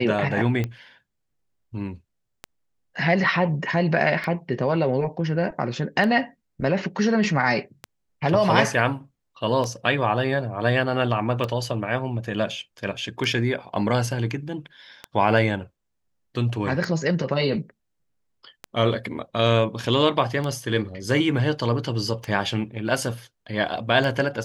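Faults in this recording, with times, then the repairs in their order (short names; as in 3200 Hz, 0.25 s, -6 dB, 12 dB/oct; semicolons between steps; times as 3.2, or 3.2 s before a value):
tick 33 1/3 rpm -15 dBFS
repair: de-click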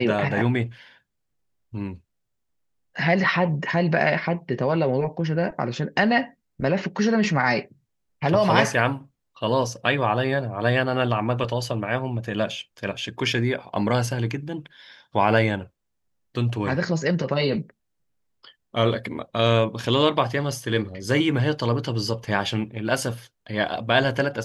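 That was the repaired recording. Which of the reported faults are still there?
none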